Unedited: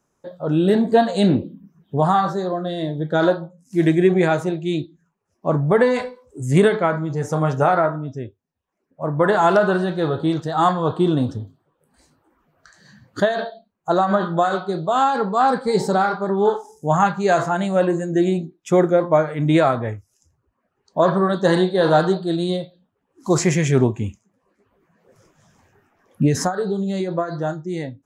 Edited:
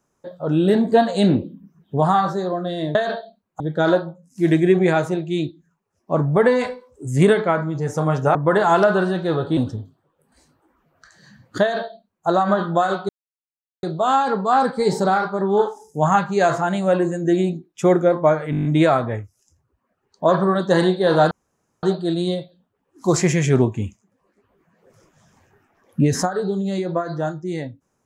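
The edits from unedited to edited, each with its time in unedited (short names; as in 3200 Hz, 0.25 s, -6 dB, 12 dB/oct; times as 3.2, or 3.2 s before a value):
7.7–9.08 cut
10.3–11.19 cut
13.24–13.89 copy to 2.95
14.71 insert silence 0.74 s
19.39 stutter 0.02 s, 8 plays
22.05 insert room tone 0.52 s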